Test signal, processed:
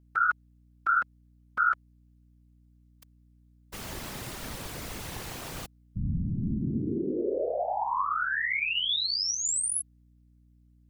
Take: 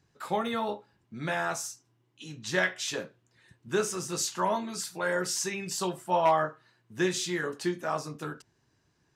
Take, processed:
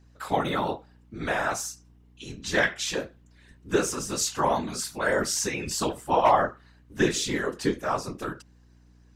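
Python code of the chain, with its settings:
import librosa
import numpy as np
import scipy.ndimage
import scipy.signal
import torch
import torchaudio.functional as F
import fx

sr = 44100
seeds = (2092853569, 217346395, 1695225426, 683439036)

y = fx.whisperise(x, sr, seeds[0])
y = fx.add_hum(y, sr, base_hz=60, snr_db=28)
y = F.gain(torch.from_numpy(y), 3.5).numpy()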